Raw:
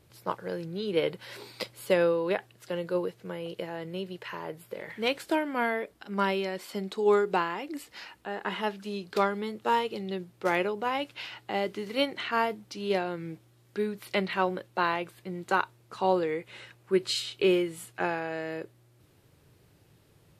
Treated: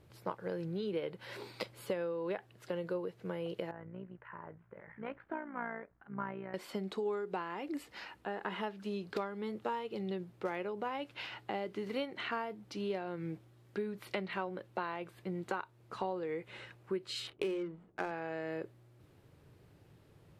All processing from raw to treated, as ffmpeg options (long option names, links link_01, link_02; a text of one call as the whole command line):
ffmpeg -i in.wav -filter_complex "[0:a]asettb=1/sr,asplit=3[link_01][link_02][link_03];[link_01]atrim=end=3.714[link_04];[link_02]atrim=start=3.71:end=6.54,asetpts=PTS-STARTPTS,afade=type=in:duration=0.004:curve=qsin,afade=type=out:start_time=2.826:duration=0.004:curve=qsin,lowpass=frequency=1700:width=0.5412,lowpass=frequency=1700:width=1.3066,tremolo=f=59:d=0.667,equalizer=frequency=430:width=0.61:gain=-12[link_05];[link_03]atrim=start=6.536[link_06];[link_04][link_05]acrossfade=duration=0.004:curve1=hsin:curve2=qsin[link_07];[link_07][link_06]acrossfade=duration=0.004:curve1=qsin:curve2=hsin,asettb=1/sr,asplit=3[link_08][link_09][link_10];[link_08]atrim=end=17.274[link_11];[link_09]atrim=start=17.27:end=18.11,asetpts=PTS-STARTPTS,afade=type=in:duration=0.004:curve=qsin,afade=type=out:start_time=0.836:duration=0.004:curve=qsin,adynamicsmooth=sensitivity=6.5:basefreq=570,bandreject=frequency=60:width_type=h:width=6,bandreject=frequency=120:width_type=h:width=6,bandreject=frequency=180:width_type=h:width=6,bandreject=frequency=240:width_type=h:width=6[link_12];[link_10]atrim=start=18.106[link_13];[link_11][link_12]acrossfade=duration=0.004:curve1=hsin:curve2=qsin[link_14];[link_14][link_13]acrossfade=duration=0.004:curve1=qsin:curve2=hsin,highshelf=frequency=3300:gain=-10,acompressor=threshold=-34dB:ratio=6" out.wav